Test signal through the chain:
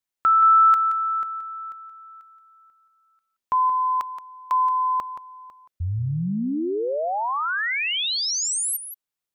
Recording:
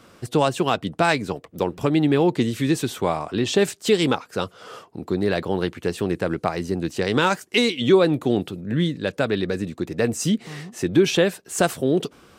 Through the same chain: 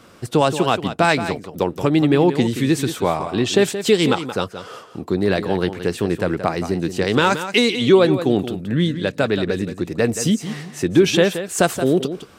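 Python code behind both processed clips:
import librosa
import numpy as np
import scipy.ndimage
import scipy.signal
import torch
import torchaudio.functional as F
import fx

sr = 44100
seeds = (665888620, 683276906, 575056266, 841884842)

y = x + 10.0 ** (-11.0 / 20.0) * np.pad(x, (int(175 * sr / 1000.0), 0))[:len(x)]
y = y * librosa.db_to_amplitude(3.0)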